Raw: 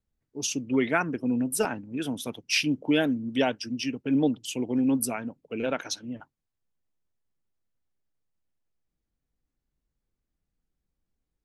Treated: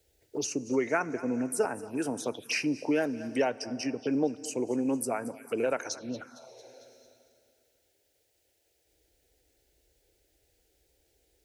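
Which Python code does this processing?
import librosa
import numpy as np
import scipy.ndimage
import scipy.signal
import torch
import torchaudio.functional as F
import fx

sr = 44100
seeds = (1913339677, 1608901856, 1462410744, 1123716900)

p1 = scipy.signal.sosfilt(scipy.signal.butter(2, 53.0, 'highpass', fs=sr, output='sos'), x)
p2 = p1 + fx.echo_thinned(p1, sr, ms=225, feedback_pct=34, hz=420.0, wet_db=-20.5, dry=0)
p3 = fx.rev_plate(p2, sr, seeds[0], rt60_s=2.4, hf_ratio=0.85, predelay_ms=0, drr_db=19.5)
p4 = fx.env_phaser(p3, sr, low_hz=190.0, high_hz=3400.0, full_db=-29.0)
p5 = fx.low_shelf_res(p4, sr, hz=310.0, db=-6.5, q=1.5)
y = fx.band_squash(p5, sr, depth_pct=70)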